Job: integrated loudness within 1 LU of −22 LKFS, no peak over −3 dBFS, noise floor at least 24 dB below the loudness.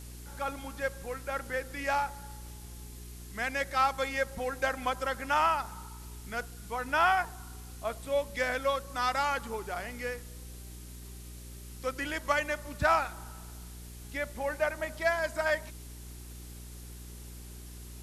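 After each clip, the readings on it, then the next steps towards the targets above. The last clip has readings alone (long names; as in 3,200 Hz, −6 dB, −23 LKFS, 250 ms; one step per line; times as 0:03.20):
mains hum 60 Hz; hum harmonics up to 420 Hz; level of the hum −44 dBFS; background noise floor −46 dBFS; target noise floor −56 dBFS; integrated loudness −31.5 LKFS; sample peak −15.0 dBFS; target loudness −22.0 LKFS
→ hum removal 60 Hz, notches 7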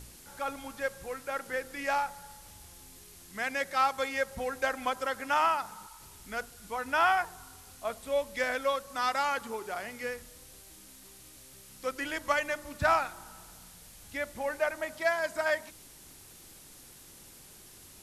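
mains hum none found; background noise floor −53 dBFS; target noise floor −56 dBFS
→ broadband denoise 6 dB, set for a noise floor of −53 dBFS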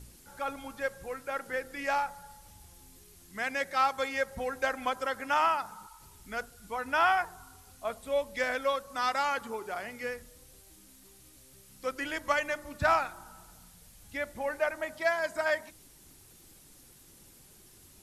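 background noise floor −57 dBFS; integrated loudness −31.5 LKFS; sample peak −15.0 dBFS; target loudness −22.0 LKFS
→ level +9.5 dB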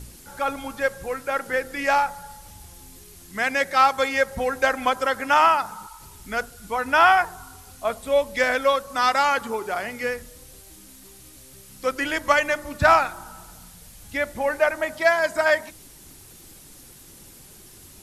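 integrated loudness −22.0 LKFS; sample peak −5.5 dBFS; background noise floor −47 dBFS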